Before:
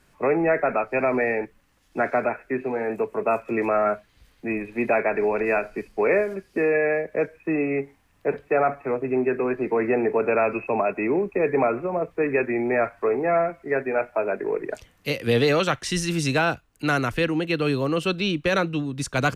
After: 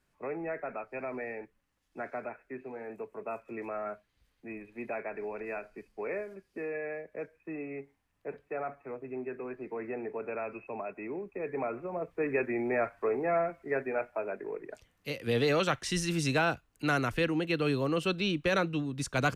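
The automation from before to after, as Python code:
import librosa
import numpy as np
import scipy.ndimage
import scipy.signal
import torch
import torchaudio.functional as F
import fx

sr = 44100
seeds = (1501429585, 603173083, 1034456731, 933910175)

y = fx.gain(x, sr, db=fx.line((11.3, -15.5), (12.32, -7.5), (13.81, -7.5), (14.72, -14.0), (15.63, -6.0)))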